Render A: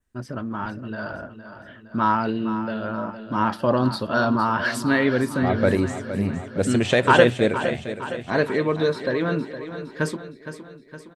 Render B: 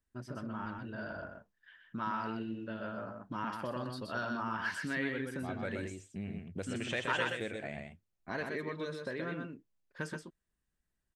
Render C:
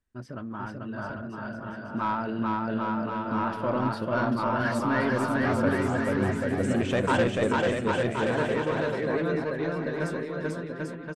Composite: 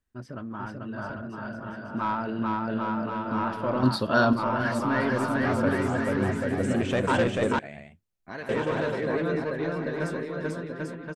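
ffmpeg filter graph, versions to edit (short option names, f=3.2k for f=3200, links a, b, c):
-filter_complex "[2:a]asplit=3[a][b][c];[a]atrim=end=3.832[d];[0:a]atrim=start=3.828:end=4.332[e];[b]atrim=start=4.328:end=7.592[f];[1:a]atrim=start=7.588:end=8.492[g];[c]atrim=start=8.488[h];[d][e]acrossfade=d=0.004:c1=hsin:c2=hsin[i];[i][f]acrossfade=d=0.004:c1=hsin:c2=hsin[j];[j][g]acrossfade=d=0.004:c1=hsin:c2=hsin[k];[k][h]acrossfade=d=0.004:c1=hsin:c2=hsin"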